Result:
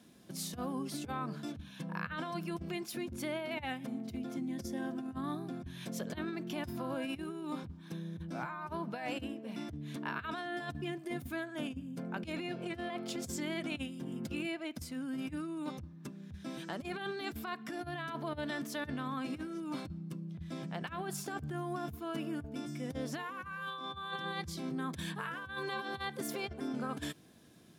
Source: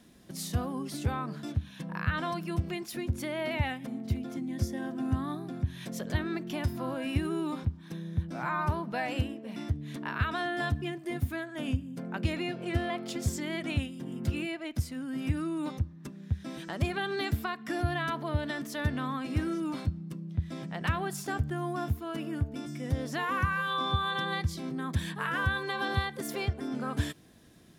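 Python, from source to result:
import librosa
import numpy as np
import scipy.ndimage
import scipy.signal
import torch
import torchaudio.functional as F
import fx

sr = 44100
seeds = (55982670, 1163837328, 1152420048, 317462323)

y = scipy.signal.sosfilt(scipy.signal.butter(2, 99.0, 'highpass', fs=sr, output='sos'), x)
y = fx.notch(y, sr, hz=1900.0, q=14.0)
y = fx.over_compress(y, sr, threshold_db=-34.0, ratio=-0.5)
y = F.gain(torch.from_numpy(y), -4.0).numpy()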